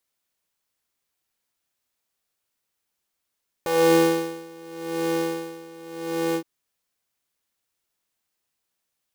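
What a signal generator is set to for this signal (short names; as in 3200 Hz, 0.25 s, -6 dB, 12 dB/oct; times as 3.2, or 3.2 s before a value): synth patch with tremolo E3, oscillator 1 square, oscillator 2 triangle, interval +12 st, oscillator 2 level -3.5 dB, noise -13.5 dB, filter highpass, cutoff 300 Hz, Q 3.1, filter envelope 1 oct, attack 1.4 ms, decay 0.82 s, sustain -9.5 dB, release 0.08 s, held 2.69 s, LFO 0.85 Hz, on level 19 dB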